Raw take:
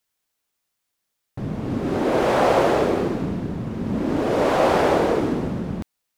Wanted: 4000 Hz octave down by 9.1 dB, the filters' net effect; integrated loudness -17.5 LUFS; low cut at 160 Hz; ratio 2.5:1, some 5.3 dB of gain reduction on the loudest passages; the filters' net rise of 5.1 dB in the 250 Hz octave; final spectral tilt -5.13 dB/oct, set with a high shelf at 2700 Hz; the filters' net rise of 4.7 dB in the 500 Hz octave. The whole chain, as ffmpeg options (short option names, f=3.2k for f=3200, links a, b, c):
-af "highpass=160,equalizer=f=250:t=o:g=6,equalizer=f=500:t=o:g=4.5,highshelf=f=2.7k:g=-6,equalizer=f=4k:t=o:g=-7.5,acompressor=threshold=-18dB:ratio=2.5,volume=4dB"